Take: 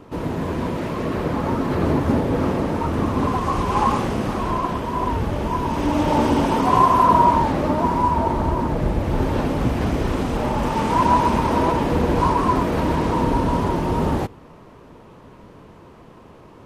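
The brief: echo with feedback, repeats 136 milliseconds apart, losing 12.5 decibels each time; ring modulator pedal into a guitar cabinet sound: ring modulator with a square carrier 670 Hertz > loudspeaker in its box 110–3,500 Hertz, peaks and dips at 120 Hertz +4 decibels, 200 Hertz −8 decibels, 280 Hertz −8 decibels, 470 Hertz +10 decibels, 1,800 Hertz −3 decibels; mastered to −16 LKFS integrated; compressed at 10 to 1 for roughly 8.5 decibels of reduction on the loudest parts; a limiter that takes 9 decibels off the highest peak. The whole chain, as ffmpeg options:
ffmpeg -i in.wav -af "acompressor=threshold=-19dB:ratio=10,alimiter=limit=-20dB:level=0:latency=1,aecho=1:1:136|272|408:0.237|0.0569|0.0137,aeval=exprs='val(0)*sgn(sin(2*PI*670*n/s))':channel_layout=same,highpass=110,equalizer=frequency=120:width_type=q:width=4:gain=4,equalizer=frequency=200:width_type=q:width=4:gain=-8,equalizer=frequency=280:width_type=q:width=4:gain=-8,equalizer=frequency=470:width_type=q:width=4:gain=10,equalizer=frequency=1800:width_type=q:width=4:gain=-3,lowpass=frequency=3500:width=0.5412,lowpass=frequency=3500:width=1.3066,volume=10.5dB" out.wav

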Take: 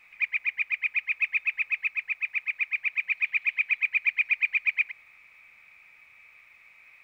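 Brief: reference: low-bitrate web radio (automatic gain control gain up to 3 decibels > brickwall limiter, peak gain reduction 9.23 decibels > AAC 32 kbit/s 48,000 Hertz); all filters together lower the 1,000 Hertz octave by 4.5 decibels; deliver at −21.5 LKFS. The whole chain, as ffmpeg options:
ffmpeg -i in.wav -af "equalizer=frequency=1000:width_type=o:gain=-6,dynaudnorm=maxgain=3dB,alimiter=level_in=1dB:limit=-24dB:level=0:latency=1,volume=-1dB,volume=11dB" -ar 48000 -c:a aac -b:a 32k out.aac

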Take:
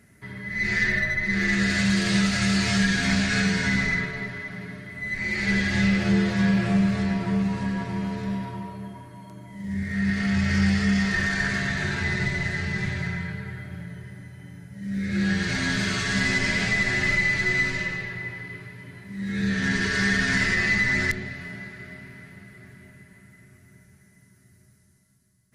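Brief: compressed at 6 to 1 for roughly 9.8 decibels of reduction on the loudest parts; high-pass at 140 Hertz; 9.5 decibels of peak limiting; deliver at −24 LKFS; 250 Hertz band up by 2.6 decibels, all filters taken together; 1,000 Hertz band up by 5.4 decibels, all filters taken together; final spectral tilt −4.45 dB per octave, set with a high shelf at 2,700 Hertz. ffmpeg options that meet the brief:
ffmpeg -i in.wav -af "highpass=140,equalizer=frequency=250:width_type=o:gain=5,equalizer=frequency=1000:width_type=o:gain=6,highshelf=frequency=2700:gain=5.5,acompressor=threshold=-26dB:ratio=6,volume=9.5dB,alimiter=limit=-16.5dB:level=0:latency=1" out.wav

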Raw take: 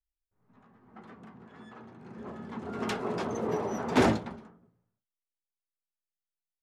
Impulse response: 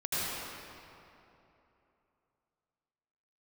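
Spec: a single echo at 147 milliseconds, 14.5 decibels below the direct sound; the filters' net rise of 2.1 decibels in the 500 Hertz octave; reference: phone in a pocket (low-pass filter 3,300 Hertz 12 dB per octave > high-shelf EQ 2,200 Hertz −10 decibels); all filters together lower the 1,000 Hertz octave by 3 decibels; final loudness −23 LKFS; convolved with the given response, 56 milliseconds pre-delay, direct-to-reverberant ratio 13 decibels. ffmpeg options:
-filter_complex "[0:a]equalizer=frequency=500:width_type=o:gain=4,equalizer=frequency=1000:width_type=o:gain=-3.5,aecho=1:1:147:0.188,asplit=2[link_01][link_02];[1:a]atrim=start_sample=2205,adelay=56[link_03];[link_02][link_03]afir=irnorm=-1:irlink=0,volume=-21.5dB[link_04];[link_01][link_04]amix=inputs=2:normalize=0,lowpass=3300,highshelf=frequency=2200:gain=-10,volume=8dB"

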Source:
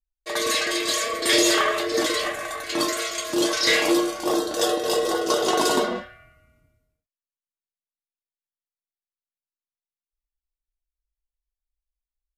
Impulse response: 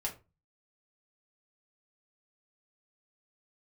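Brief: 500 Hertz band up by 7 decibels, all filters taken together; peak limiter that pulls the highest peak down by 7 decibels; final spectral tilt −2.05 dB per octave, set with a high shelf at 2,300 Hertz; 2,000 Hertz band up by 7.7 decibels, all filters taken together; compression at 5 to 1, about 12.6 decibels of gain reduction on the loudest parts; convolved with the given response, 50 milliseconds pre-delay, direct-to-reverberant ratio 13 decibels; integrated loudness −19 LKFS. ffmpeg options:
-filter_complex "[0:a]equalizer=frequency=500:width_type=o:gain=8,equalizer=frequency=2000:width_type=o:gain=4.5,highshelf=frequency=2300:gain=8.5,acompressor=threshold=-23dB:ratio=5,alimiter=limit=-19dB:level=0:latency=1,asplit=2[link_01][link_02];[1:a]atrim=start_sample=2205,adelay=50[link_03];[link_02][link_03]afir=irnorm=-1:irlink=0,volume=-15dB[link_04];[link_01][link_04]amix=inputs=2:normalize=0,volume=7.5dB"

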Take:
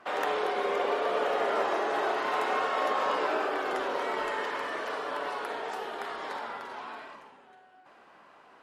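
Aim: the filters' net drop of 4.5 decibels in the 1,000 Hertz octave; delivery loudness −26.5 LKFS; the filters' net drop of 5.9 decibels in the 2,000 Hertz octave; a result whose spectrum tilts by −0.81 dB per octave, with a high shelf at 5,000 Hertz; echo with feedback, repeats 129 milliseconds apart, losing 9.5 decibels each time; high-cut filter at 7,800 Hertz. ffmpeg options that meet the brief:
ffmpeg -i in.wav -af "lowpass=7800,equalizer=frequency=1000:width_type=o:gain=-4.5,equalizer=frequency=2000:width_type=o:gain=-5.5,highshelf=frequency=5000:gain=-3.5,aecho=1:1:129|258|387|516:0.335|0.111|0.0365|0.012,volume=6.5dB" out.wav

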